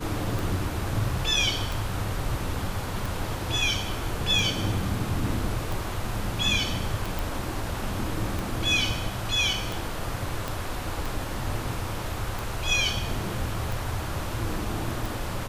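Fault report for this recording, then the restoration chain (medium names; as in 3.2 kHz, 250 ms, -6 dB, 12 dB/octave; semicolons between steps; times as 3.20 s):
tick 45 rpm
7.19 s: pop
10.48 s: pop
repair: de-click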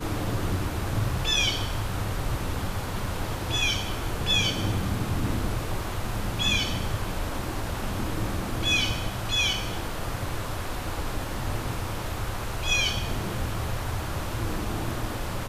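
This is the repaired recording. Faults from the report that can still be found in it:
10.48 s: pop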